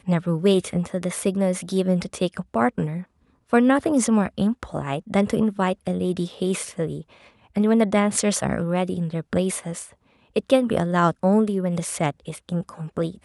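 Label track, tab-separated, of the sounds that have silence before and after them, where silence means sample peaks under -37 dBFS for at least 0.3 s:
3.530000	7.020000	sound
7.560000	9.880000	sound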